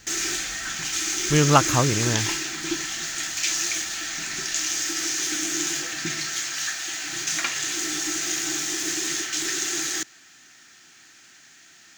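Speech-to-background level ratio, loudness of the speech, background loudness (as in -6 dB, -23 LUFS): 3.0 dB, -22.0 LUFS, -25.0 LUFS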